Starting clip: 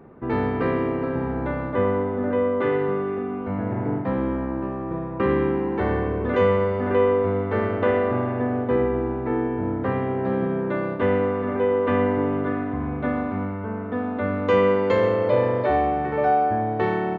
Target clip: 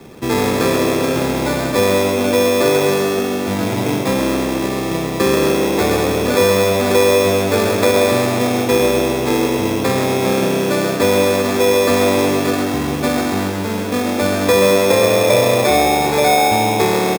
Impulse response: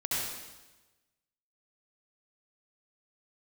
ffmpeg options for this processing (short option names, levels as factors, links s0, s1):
-filter_complex "[0:a]acrossover=split=96|370|800[s0][s1][s2][s3];[s0]acompressor=threshold=0.00501:ratio=4[s4];[s1]acompressor=threshold=0.0398:ratio=4[s5];[s2]acompressor=threshold=0.0794:ratio=4[s6];[s3]acompressor=threshold=0.0251:ratio=4[s7];[s4][s5][s6][s7]amix=inputs=4:normalize=0,acrusher=samples=15:mix=1:aa=0.000001,asplit=6[s8][s9][s10][s11][s12][s13];[s9]adelay=132,afreqshift=92,volume=0.398[s14];[s10]adelay=264,afreqshift=184,volume=0.168[s15];[s11]adelay=396,afreqshift=276,volume=0.07[s16];[s12]adelay=528,afreqshift=368,volume=0.0295[s17];[s13]adelay=660,afreqshift=460,volume=0.0124[s18];[s8][s14][s15][s16][s17][s18]amix=inputs=6:normalize=0,volume=2.66"